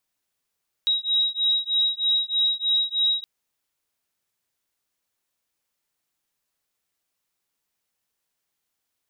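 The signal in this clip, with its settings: beating tones 3820 Hz, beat 3.2 Hz, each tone -23 dBFS 2.37 s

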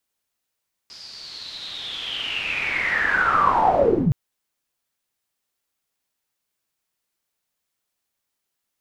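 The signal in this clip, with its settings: swept filtered noise white, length 3.22 s lowpass, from 5000 Hz, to 110 Hz, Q 11, linear, gain ramp +37 dB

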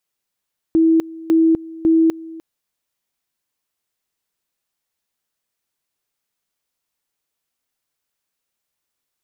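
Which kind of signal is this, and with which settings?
two-level tone 325 Hz -10 dBFS, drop 20.5 dB, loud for 0.25 s, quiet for 0.30 s, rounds 3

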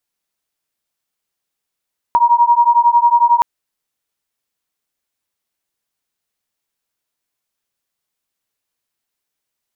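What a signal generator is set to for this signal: beating tones 944 Hz, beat 11 Hz, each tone -11.5 dBFS 1.27 s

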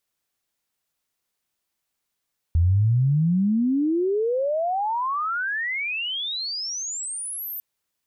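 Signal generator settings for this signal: chirp logarithmic 80 Hz -> 14000 Hz -15 dBFS -> -29.5 dBFS 5.05 s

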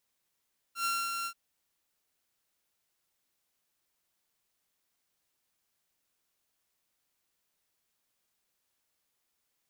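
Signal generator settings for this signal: ADSR saw 1370 Hz, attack 99 ms, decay 0.247 s, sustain -5 dB, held 0.51 s, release 73 ms -25.5 dBFS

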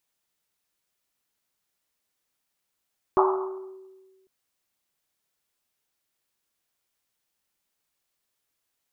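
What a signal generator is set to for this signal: Risset drum, pitch 380 Hz, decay 1.53 s, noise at 990 Hz, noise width 500 Hz, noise 40%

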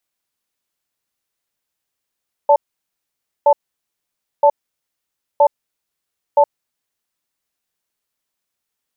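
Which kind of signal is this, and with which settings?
cadence 576 Hz, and 880 Hz, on 0.07 s, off 0.90 s, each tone -10 dBFS 3.97 s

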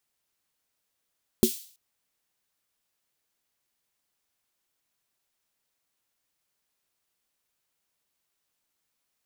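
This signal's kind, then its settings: snare drum length 0.33 s, tones 230 Hz, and 370 Hz, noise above 3200 Hz, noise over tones -11 dB, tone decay 0.11 s, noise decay 0.49 s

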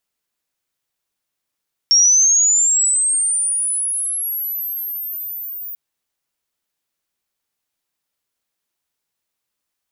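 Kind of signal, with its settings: chirp linear 5500 Hz -> 15000 Hz -8.5 dBFS -> -27 dBFS 3.84 s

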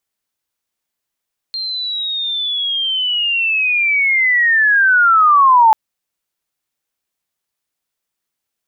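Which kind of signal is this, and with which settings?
chirp linear 4200 Hz -> 860 Hz -20 dBFS -> -5.5 dBFS 4.19 s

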